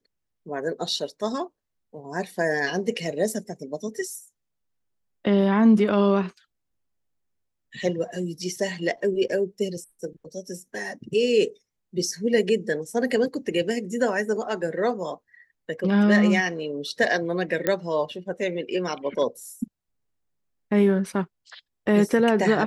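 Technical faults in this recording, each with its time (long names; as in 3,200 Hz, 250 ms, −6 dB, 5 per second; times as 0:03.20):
0:17.67: click −9 dBFS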